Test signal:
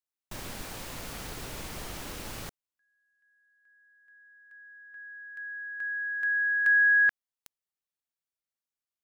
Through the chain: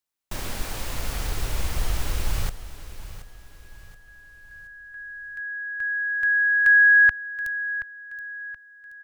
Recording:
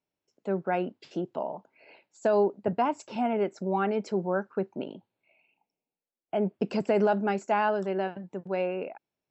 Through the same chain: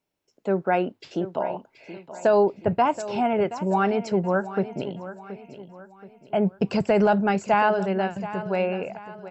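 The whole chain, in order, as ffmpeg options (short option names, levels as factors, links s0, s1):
-af "asubboost=boost=10.5:cutoff=86,aecho=1:1:726|1452|2178|2904:0.2|0.0818|0.0335|0.0138,volume=2.11"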